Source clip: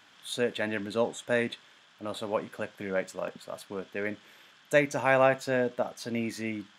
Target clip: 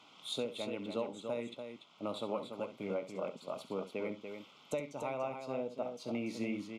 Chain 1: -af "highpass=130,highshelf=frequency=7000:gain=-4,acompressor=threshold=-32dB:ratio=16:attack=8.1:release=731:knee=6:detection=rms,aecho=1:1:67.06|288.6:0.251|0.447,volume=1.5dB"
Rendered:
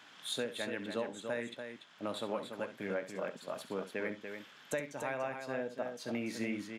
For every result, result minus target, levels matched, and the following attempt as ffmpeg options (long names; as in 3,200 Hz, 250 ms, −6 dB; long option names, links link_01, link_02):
2,000 Hz band +7.5 dB; 8,000 Hz band +5.0 dB
-af "highpass=130,highshelf=frequency=7000:gain=-4,acompressor=threshold=-32dB:ratio=16:attack=8.1:release=731:knee=6:detection=rms,asuperstop=centerf=1700:order=4:qfactor=2,aecho=1:1:67.06|288.6:0.251|0.447,volume=1.5dB"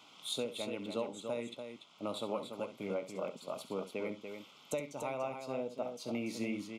8,000 Hz band +5.5 dB
-af "highpass=130,highshelf=frequency=7000:gain=-15,acompressor=threshold=-32dB:ratio=16:attack=8.1:release=731:knee=6:detection=rms,asuperstop=centerf=1700:order=4:qfactor=2,aecho=1:1:67.06|288.6:0.251|0.447,volume=1.5dB"